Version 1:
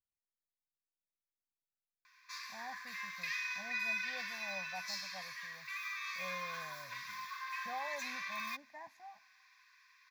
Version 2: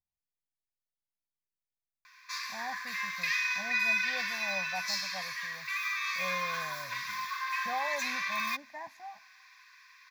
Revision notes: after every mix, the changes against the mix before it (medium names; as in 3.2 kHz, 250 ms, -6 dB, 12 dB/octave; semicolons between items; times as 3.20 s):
speech +7.5 dB; background +8.5 dB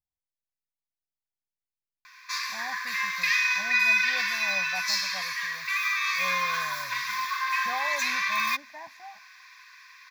background +6.5 dB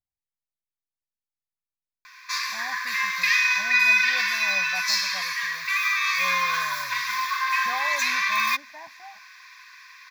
background +3.5 dB